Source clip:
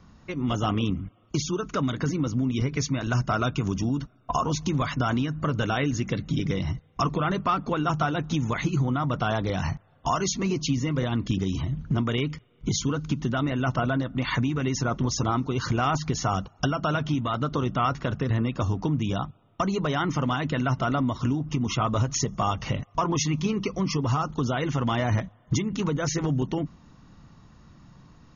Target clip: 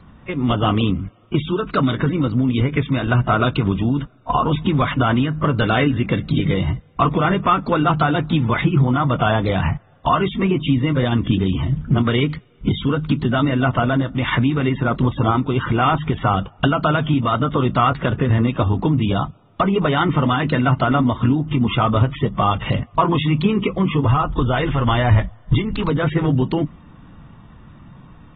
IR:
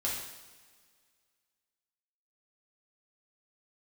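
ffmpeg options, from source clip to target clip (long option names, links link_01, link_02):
-filter_complex "[0:a]asplit=3[link_01][link_02][link_03];[link_01]afade=type=out:start_time=24.06:duration=0.02[link_04];[link_02]asubboost=boost=8:cutoff=60,afade=type=in:start_time=24.06:duration=0.02,afade=type=out:start_time=25.89:duration=0.02[link_05];[link_03]afade=type=in:start_time=25.89:duration=0.02[link_06];[link_04][link_05][link_06]amix=inputs=3:normalize=0,volume=7.5dB" -ar 32000 -c:a aac -b:a 16k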